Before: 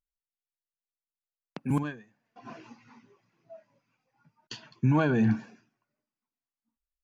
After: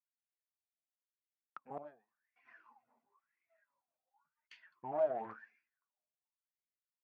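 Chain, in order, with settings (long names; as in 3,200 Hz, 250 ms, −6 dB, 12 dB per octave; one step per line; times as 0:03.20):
harmonic generator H 4 −8 dB, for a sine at −13.5 dBFS
LFO wah 0.94 Hz 630–2,200 Hz, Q 14
level +2 dB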